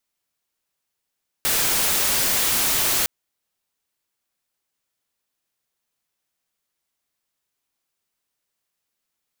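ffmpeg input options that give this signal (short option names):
-f lavfi -i "anoisesrc=c=white:a=0.163:d=1.61:r=44100:seed=1"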